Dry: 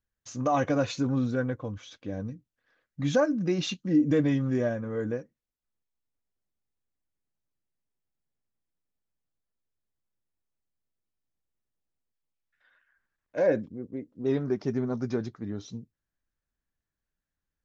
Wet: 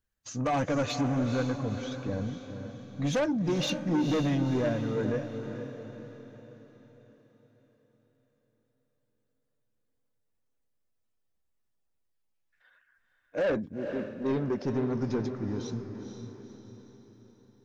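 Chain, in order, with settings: bin magnitudes rounded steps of 15 dB; soft clip -26 dBFS, distortion -10 dB; diffused feedback echo 0.483 s, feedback 47%, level -8 dB; gain +2.5 dB

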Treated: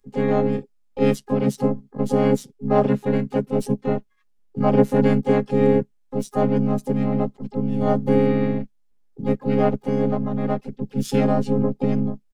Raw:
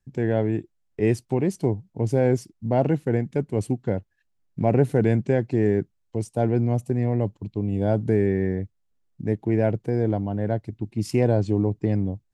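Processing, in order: robotiser 207 Hz; harmoniser -7 st -3 dB, +4 st -3 dB, +12 st -13 dB; gain +2 dB

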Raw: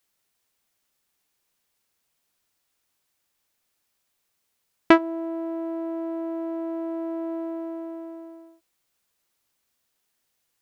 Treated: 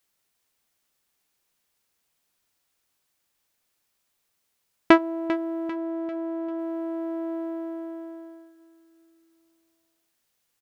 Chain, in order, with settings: 5.69–6.59 high shelf 4800 Hz -7 dB; feedback echo 0.395 s, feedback 45%, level -14 dB

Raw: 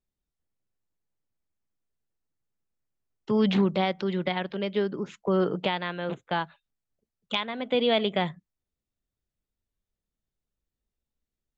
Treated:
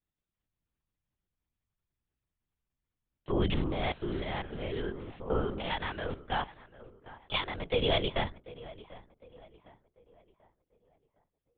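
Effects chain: 3.53–5.74 stepped spectrum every 0.1 s; low shelf 430 Hz -4.5 dB; tape echo 0.748 s, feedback 44%, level -16.5 dB, low-pass 2000 Hz; LPC vocoder at 8 kHz whisper; gain -2.5 dB

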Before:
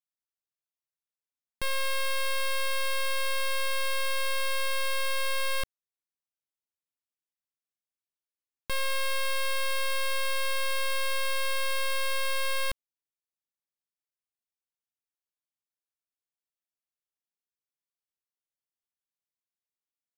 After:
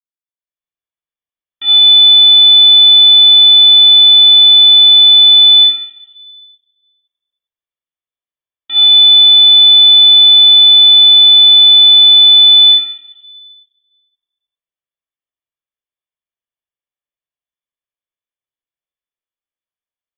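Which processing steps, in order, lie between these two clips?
AGC gain up to 12.5 dB; shoebox room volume 4000 m³, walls furnished, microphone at 5.9 m; inverted band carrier 3500 Hz; gain -14.5 dB

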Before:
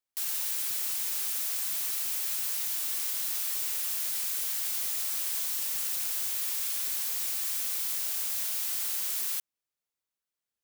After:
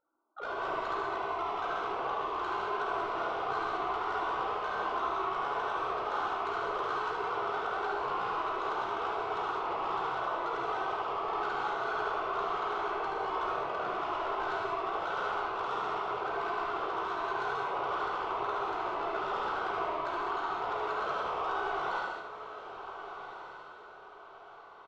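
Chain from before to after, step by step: sine-wave speech; in parallel at -1 dB: limiter -28 dBFS, peak gain reduction 7.5 dB; on the sum: soft clip -27 dBFS, distortion -13 dB; AM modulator 140 Hz, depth 65%; doubler 32 ms -6 dB; on a send: diffused feedback echo 0.629 s, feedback 40%, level -10.5 dB; on the sum: non-linear reverb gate 0.11 s flat, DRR -4 dB; speed mistake 78 rpm record played at 33 rpm; gain -5.5 dB

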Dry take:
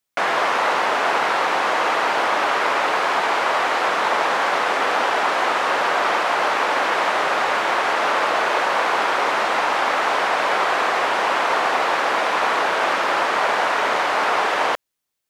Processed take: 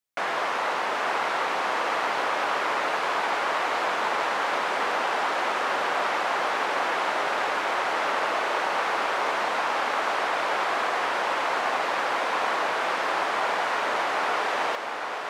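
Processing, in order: diffused feedback echo 0.796 s, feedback 62%, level -7 dB; gain -7.5 dB

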